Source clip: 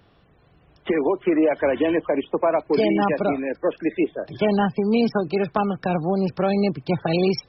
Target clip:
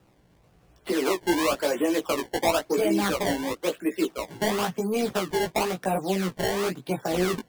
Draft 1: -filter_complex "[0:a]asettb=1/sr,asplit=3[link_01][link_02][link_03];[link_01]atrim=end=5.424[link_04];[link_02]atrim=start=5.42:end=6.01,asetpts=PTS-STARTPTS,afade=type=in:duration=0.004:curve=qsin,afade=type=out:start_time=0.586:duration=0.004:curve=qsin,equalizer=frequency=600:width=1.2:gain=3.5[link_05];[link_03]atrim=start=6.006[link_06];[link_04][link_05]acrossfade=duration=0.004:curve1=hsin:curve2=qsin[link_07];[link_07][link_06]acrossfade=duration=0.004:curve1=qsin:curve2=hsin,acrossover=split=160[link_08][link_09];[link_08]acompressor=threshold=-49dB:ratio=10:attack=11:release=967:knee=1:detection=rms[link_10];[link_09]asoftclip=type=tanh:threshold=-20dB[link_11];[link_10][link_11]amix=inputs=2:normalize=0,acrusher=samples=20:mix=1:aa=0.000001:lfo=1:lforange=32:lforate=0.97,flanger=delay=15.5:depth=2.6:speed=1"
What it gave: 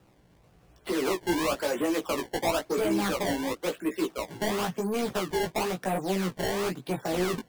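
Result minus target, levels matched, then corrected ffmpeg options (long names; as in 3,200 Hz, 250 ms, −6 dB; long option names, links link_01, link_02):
soft clipping: distortion +11 dB
-filter_complex "[0:a]asettb=1/sr,asplit=3[link_01][link_02][link_03];[link_01]atrim=end=5.424[link_04];[link_02]atrim=start=5.42:end=6.01,asetpts=PTS-STARTPTS,afade=type=in:duration=0.004:curve=qsin,afade=type=out:start_time=0.586:duration=0.004:curve=qsin,equalizer=frequency=600:width=1.2:gain=3.5[link_05];[link_03]atrim=start=6.006[link_06];[link_04][link_05]acrossfade=duration=0.004:curve1=hsin:curve2=qsin[link_07];[link_07][link_06]acrossfade=duration=0.004:curve1=qsin:curve2=hsin,acrossover=split=160[link_08][link_09];[link_08]acompressor=threshold=-49dB:ratio=10:attack=11:release=967:knee=1:detection=rms[link_10];[link_09]asoftclip=type=tanh:threshold=-11.5dB[link_11];[link_10][link_11]amix=inputs=2:normalize=0,acrusher=samples=20:mix=1:aa=0.000001:lfo=1:lforange=32:lforate=0.97,flanger=delay=15.5:depth=2.6:speed=1"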